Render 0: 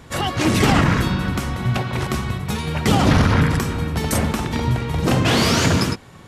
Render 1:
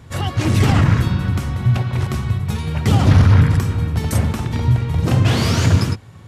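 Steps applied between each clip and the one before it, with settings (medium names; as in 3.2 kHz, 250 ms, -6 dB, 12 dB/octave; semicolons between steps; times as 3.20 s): peaking EQ 100 Hz +13.5 dB 1 oct; trim -4 dB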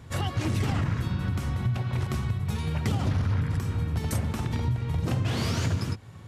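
compression 4:1, threshold -20 dBFS, peak gain reduction 11.5 dB; trim -4.5 dB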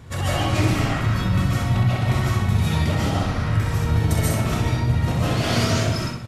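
peak limiter -21.5 dBFS, peak gain reduction 6 dB; feedback delay 64 ms, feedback 35%, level -5.5 dB; reverberation RT60 0.40 s, pre-delay 105 ms, DRR -6.5 dB; trim +3.5 dB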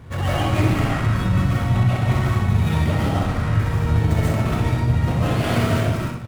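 median filter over 9 samples; trim +1.5 dB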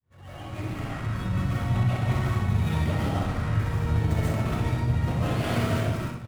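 fade-in on the opening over 1.75 s; trim -6 dB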